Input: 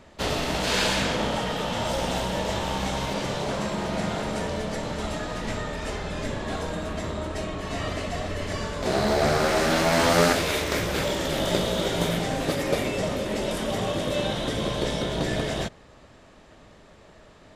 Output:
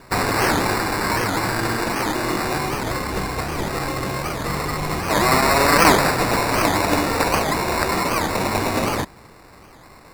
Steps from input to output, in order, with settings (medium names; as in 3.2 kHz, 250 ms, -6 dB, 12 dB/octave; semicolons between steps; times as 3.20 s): resonant high shelf 7.8 kHz +11 dB, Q 3; sample-and-hold 24×; speed mistake 45 rpm record played at 78 rpm; warped record 78 rpm, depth 250 cents; trim +5.5 dB